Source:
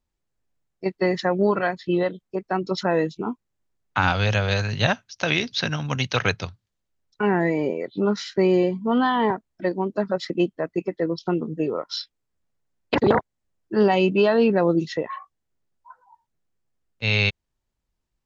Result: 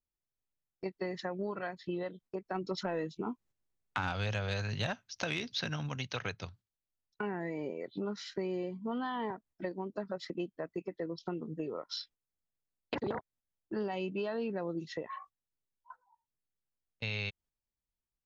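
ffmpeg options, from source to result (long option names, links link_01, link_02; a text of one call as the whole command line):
ffmpeg -i in.wav -filter_complex "[0:a]asplit=3[link_01][link_02][link_03];[link_01]afade=type=out:start_time=2.54:duration=0.02[link_04];[link_02]acontrast=74,afade=type=in:start_time=2.54:duration=0.02,afade=type=out:start_time=5.88:duration=0.02[link_05];[link_03]afade=type=in:start_time=5.88:duration=0.02[link_06];[link_04][link_05][link_06]amix=inputs=3:normalize=0,agate=range=-11dB:threshold=-46dB:ratio=16:detection=peak,acompressor=threshold=-33dB:ratio=3,volume=-4.5dB" out.wav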